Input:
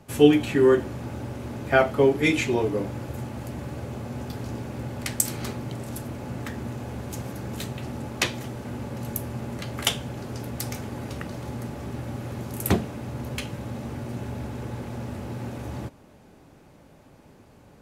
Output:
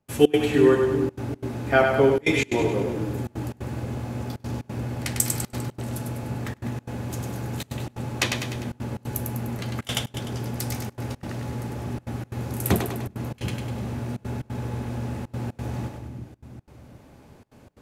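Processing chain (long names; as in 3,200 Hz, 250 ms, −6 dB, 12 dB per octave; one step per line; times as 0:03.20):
echo with a time of its own for lows and highs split 340 Hz, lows 366 ms, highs 100 ms, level −5 dB
gate pattern ".xx.xxxxxxxxx" 179 BPM −24 dB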